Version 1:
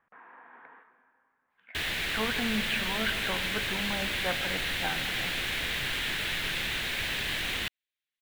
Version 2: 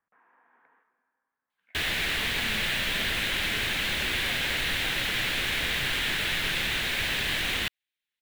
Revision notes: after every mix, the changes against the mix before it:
speech -12.0 dB; background +3.5 dB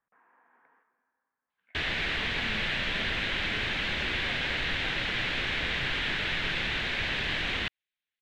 master: add air absorption 160 m

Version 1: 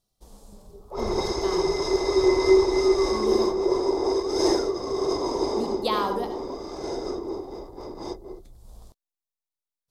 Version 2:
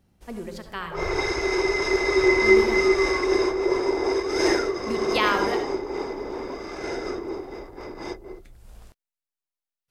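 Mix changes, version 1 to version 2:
speech: entry -0.70 s; master: add band shelf 2000 Hz +13.5 dB 1.3 oct

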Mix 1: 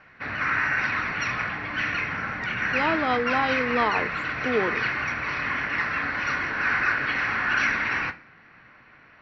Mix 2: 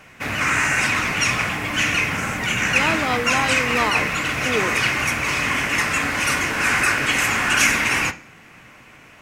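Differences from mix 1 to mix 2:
background: remove rippled Chebyshev low-pass 5900 Hz, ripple 9 dB; master: remove air absorption 220 m

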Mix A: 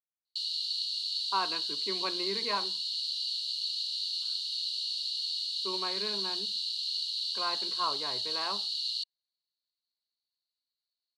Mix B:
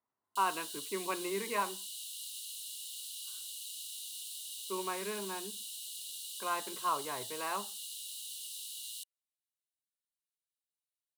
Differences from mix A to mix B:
speech: entry -0.95 s; background: remove synth low-pass 4400 Hz, resonance Q 16

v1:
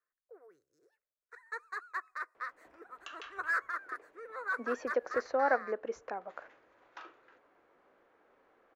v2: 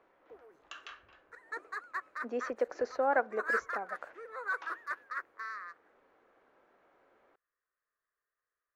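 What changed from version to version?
speech: entry -2.35 s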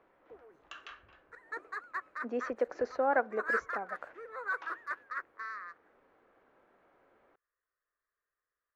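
master: add tone controls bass +5 dB, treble -5 dB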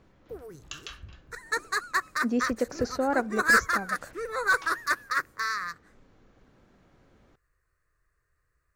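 background +10.0 dB; master: remove three-band isolator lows -23 dB, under 370 Hz, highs -22 dB, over 2400 Hz

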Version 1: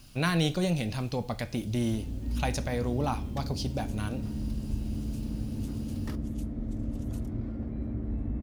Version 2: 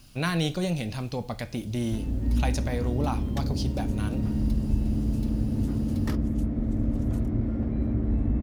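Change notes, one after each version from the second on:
first sound: send off; second sound +7.5 dB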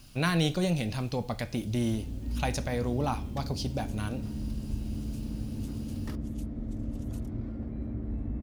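second sound -9.0 dB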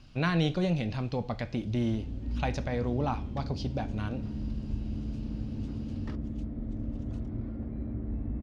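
master: add air absorption 160 m

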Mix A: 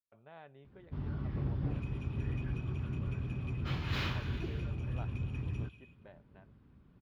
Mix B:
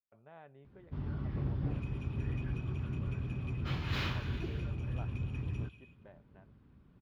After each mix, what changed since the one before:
speech: add air absorption 310 m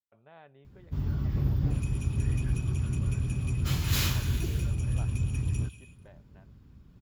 first sound: add low shelf 160 Hz +11.5 dB; master: remove air absorption 330 m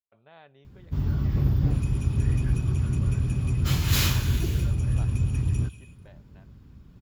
speech: remove air absorption 310 m; first sound +4.5 dB

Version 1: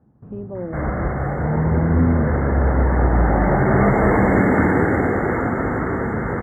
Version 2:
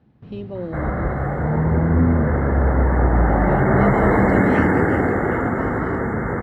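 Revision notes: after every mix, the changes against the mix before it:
speech: remove LPF 1400 Hz 24 dB/oct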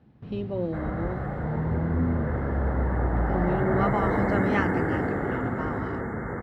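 background -9.0 dB

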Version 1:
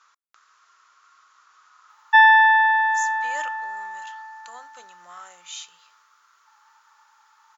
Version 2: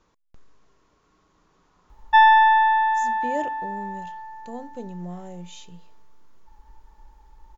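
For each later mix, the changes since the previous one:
speech: add high shelf 2900 Hz -11 dB; master: remove resonant high-pass 1300 Hz, resonance Q 5.8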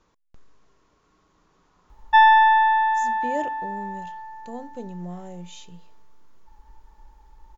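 none

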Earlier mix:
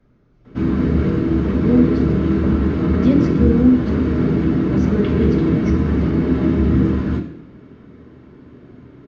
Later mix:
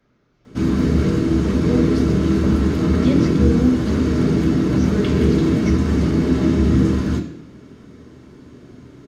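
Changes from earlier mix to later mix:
speech: add tilt +2.5 dB/oct; background: remove LPF 2600 Hz 12 dB/oct

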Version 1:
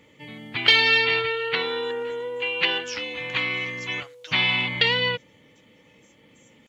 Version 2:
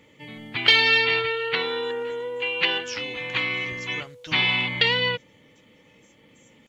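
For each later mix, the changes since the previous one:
speech: remove HPF 770 Hz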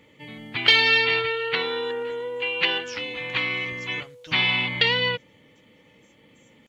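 speech -4.5 dB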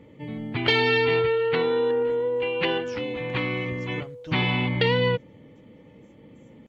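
master: add tilt shelf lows +9.5 dB, about 1100 Hz

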